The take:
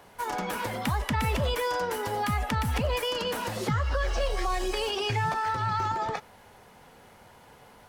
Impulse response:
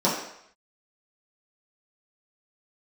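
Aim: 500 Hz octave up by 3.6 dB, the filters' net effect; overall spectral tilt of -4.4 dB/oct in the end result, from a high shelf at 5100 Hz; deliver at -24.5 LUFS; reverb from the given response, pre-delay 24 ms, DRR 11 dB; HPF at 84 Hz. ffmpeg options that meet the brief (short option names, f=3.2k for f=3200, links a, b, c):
-filter_complex "[0:a]highpass=84,equalizer=f=500:t=o:g=4,highshelf=f=5.1k:g=8,asplit=2[a][b];[1:a]atrim=start_sample=2205,adelay=24[c];[b][c]afir=irnorm=-1:irlink=0,volume=-26.5dB[d];[a][d]amix=inputs=2:normalize=0,volume=2.5dB"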